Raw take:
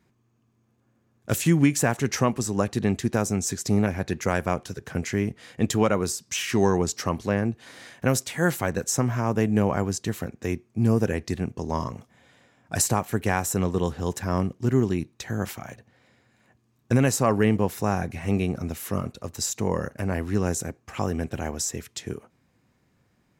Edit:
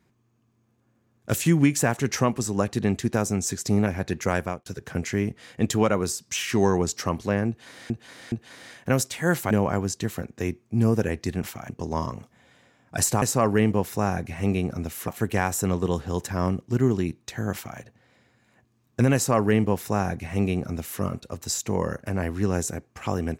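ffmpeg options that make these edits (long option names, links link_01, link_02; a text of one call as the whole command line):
ffmpeg -i in.wav -filter_complex "[0:a]asplit=9[link_01][link_02][link_03][link_04][link_05][link_06][link_07][link_08][link_09];[link_01]atrim=end=4.66,asetpts=PTS-STARTPTS,afade=type=out:start_time=4.39:duration=0.27[link_10];[link_02]atrim=start=4.66:end=7.902,asetpts=PTS-STARTPTS,afade=type=in:duration=0.004:curve=hsin[link_11];[link_03]atrim=start=7.478:end=7.902[link_12];[link_04]atrim=start=7.478:end=8.672[link_13];[link_05]atrim=start=9.548:end=11.472[link_14];[link_06]atrim=start=15.448:end=15.712[link_15];[link_07]atrim=start=11.468:end=13.002[link_16];[link_08]atrim=start=17.068:end=18.932[link_17];[link_09]atrim=start=12.998[link_18];[link_10][link_11]concat=n=2:v=0:a=1[link_19];[link_19][link_12]acrossfade=duration=0.004:curve1=hsin:curve2=hsin[link_20];[link_20][link_13]acrossfade=duration=0.004:curve1=hsin:curve2=hsin[link_21];[link_21][link_14]acrossfade=duration=0.004:curve1=hsin:curve2=hsin[link_22];[link_22][link_15]acrossfade=duration=0.004:curve1=hsin:curve2=hsin[link_23];[link_23][link_16]acrossfade=duration=0.004:curve1=hsin:curve2=hsin[link_24];[link_24][link_17]acrossfade=duration=0.004:curve1=hsin:curve2=hsin[link_25];[link_25][link_18]acrossfade=duration=0.004:curve1=hsin:curve2=hsin" out.wav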